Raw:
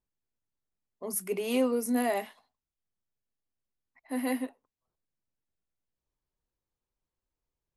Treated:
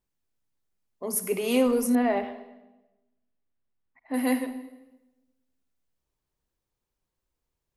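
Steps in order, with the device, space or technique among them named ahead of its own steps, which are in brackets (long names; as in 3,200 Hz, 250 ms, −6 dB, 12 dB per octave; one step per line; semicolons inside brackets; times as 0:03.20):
saturated reverb return (on a send at −10 dB: convolution reverb RT60 1.0 s, pre-delay 44 ms + soft clipping −21.5 dBFS, distortion −14 dB)
0:01.95–0:04.14: on the sum: high-frequency loss of the air 310 metres
level +4.5 dB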